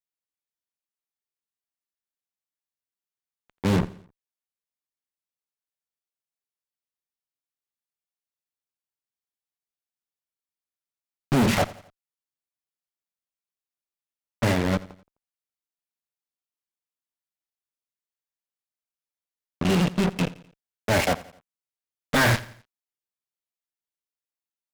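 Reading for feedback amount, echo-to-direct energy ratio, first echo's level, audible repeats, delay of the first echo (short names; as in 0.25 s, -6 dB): 44%, -18.0 dB, -19.0 dB, 3, 86 ms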